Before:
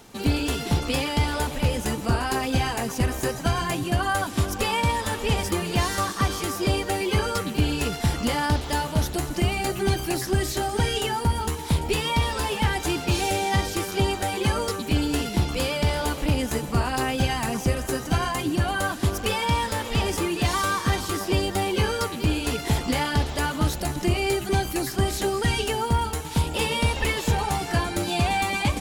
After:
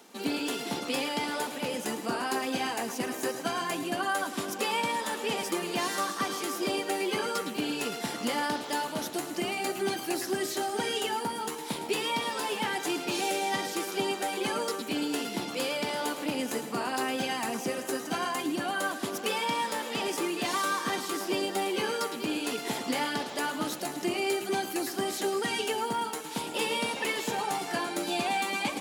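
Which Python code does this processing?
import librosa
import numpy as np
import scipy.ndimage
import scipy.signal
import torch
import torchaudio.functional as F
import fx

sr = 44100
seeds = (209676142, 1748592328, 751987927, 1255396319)

p1 = scipy.signal.sosfilt(scipy.signal.butter(4, 220.0, 'highpass', fs=sr, output='sos'), x)
p2 = p1 + fx.echo_single(p1, sr, ms=108, db=-12.0, dry=0)
y = p2 * librosa.db_to_amplitude(-4.5)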